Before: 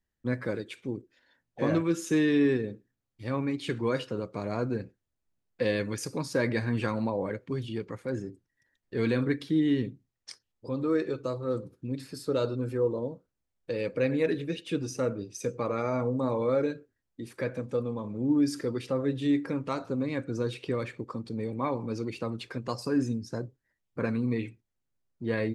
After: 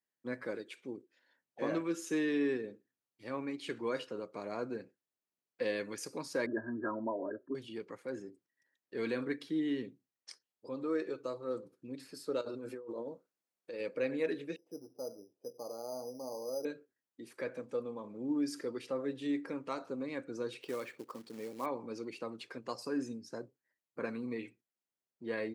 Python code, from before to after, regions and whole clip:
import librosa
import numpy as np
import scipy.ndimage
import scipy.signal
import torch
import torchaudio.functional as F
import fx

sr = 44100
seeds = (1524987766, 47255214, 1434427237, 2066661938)

y = fx.chain(x, sr, fx.envelope_sharpen(power=1.5),
    fx.brickwall_lowpass(high_hz=1800.0),
    fx.comb(ms=3.1, depth=0.89), at=(6.46, 7.55))
y = fx.chain(y, sr, fx.low_shelf(hz=97.0, db=-10.0),
    fx.notch(hz=3000.0, q=17.0),
    fx.over_compress(threshold_db=-35.0, ratio=-1.0), at=(12.41, 13.8))
y = fx.chain(y, sr, fx.ladder_lowpass(hz=860.0, resonance_pct=55),
    fx.resample_bad(factor=8, down='none', up='hold'), at=(14.56, 16.65))
y = fx.chain(y, sr, fx.low_shelf(hz=120.0, db=-8.0),
    fx.quant_float(bits=2), at=(20.61, 21.66))
y = scipy.signal.sosfilt(scipy.signal.butter(2, 280.0, 'highpass', fs=sr, output='sos'), y)
y = fx.notch(y, sr, hz=3600.0, q=25.0)
y = F.gain(torch.from_numpy(y), -6.0).numpy()